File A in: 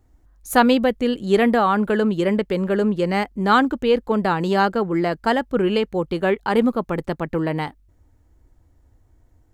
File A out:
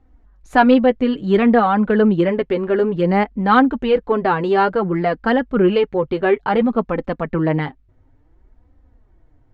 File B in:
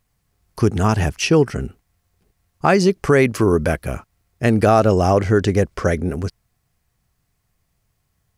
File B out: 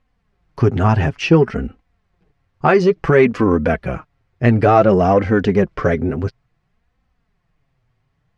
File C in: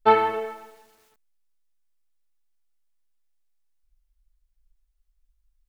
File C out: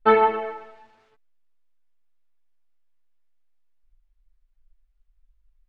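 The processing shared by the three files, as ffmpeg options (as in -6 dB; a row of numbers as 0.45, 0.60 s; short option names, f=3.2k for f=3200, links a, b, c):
-filter_complex "[0:a]flanger=delay=3.8:depth=4.2:regen=15:speed=0.57:shape=sinusoidal,asplit=2[a][b];[b]asoftclip=type=tanh:threshold=-15.5dB,volume=-5.5dB[c];[a][c]amix=inputs=2:normalize=0,lowpass=2.8k,volume=3dB"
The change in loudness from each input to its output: +3.0, +2.0, +2.0 LU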